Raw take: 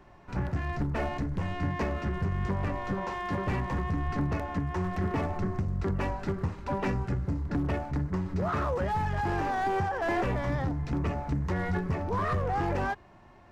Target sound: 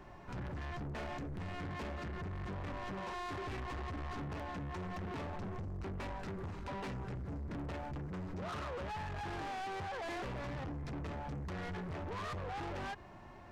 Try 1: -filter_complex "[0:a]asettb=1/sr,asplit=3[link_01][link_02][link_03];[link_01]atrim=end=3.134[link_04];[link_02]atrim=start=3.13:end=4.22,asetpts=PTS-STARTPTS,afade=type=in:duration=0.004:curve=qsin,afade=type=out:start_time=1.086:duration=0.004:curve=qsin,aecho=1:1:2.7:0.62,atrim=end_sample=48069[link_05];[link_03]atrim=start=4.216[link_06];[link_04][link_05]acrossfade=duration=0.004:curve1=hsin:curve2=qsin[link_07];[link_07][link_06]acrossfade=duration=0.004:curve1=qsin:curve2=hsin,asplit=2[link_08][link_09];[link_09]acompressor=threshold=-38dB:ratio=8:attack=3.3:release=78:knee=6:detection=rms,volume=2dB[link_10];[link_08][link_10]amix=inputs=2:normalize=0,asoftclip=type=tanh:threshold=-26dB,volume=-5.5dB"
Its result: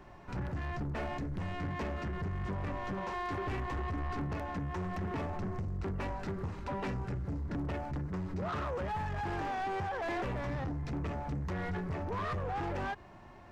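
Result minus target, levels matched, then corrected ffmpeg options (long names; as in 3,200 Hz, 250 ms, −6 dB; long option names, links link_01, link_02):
soft clipping: distortion −6 dB
-filter_complex "[0:a]asettb=1/sr,asplit=3[link_01][link_02][link_03];[link_01]atrim=end=3.134[link_04];[link_02]atrim=start=3.13:end=4.22,asetpts=PTS-STARTPTS,afade=type=in:duration=0.004:curve=qsin,afade=type=out:start_time=1.086:duration=0.004:curve=qsin,aecho=1:1:2.7:0.62,atrim=end_sample=48069[link_05];[link_03]atrim=start=4.216[link_06];[link_04][link_05]acrossfade=duration=0.004:curve1=hsin:curve2=qsin[link_07];[link_07][link_06]acrossfade=duration=0.004:curve1=qsin:curve2=hsin,asplit=2[link_08][link_09];[link_09]acompressor=threshold=-38dB:ratio=8:attack=3.3:release=78:knee=6:detection=rms,volume=2dB[link_10];[link_08][link_10]amix=inputs=2:normalize=0,asoftclip=type=tanh:threshold=-34dB,volume=-5.5dB"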